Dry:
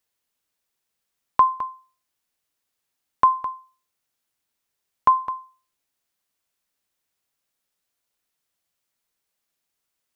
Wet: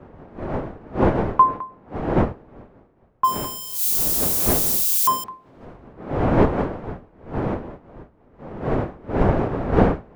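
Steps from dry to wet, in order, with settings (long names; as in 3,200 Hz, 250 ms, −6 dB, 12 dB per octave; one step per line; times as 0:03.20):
0:03.24–0:05.24: spike at every zero crossing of −15 dBFS
wind on the microphone 520 Hz −23 dBFS
speech leveller within 5 dB 2 s
multiband upward and downward expander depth 70%
level −4.5 dB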